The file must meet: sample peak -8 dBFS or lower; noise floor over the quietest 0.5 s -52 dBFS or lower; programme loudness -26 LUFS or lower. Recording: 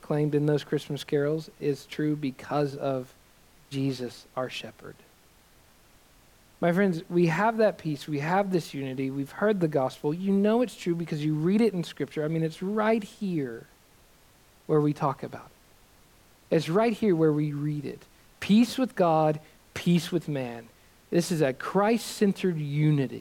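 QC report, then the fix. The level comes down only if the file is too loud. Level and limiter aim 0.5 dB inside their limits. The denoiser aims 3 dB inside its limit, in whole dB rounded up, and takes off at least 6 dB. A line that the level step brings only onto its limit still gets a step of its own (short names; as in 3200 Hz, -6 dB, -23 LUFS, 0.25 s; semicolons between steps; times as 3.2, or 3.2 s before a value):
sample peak -12.0 dBFS: OK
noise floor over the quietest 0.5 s -58 dBFS: OK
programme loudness -27.5 LUFS: OK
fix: none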